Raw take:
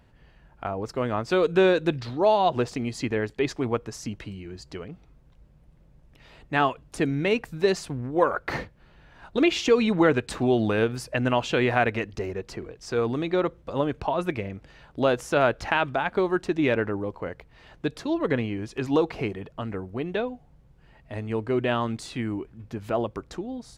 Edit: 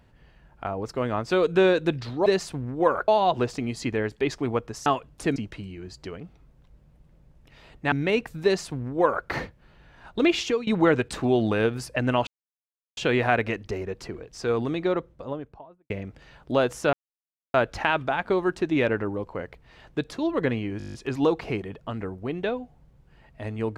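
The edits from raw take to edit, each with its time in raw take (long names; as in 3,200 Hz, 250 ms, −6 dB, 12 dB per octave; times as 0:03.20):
0:06.60–0:07.10: move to 0:04.04
0:07.62–0:08.44: duplicate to 0:02.26
0:09.58–0:09.85: fade out, to −20 dB
0:11.45: splice in silence 0.70 s
0:13.16–0:14.38: fade out and dull
0:15.41: splice in silence 0.61 s
0:18.65: stutter 0.02 s, 9 plays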